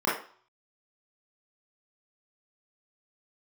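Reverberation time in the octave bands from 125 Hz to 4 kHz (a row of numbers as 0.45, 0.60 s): 0.30, 0.40, 0.40, 0.50, 0.45, 0.45 s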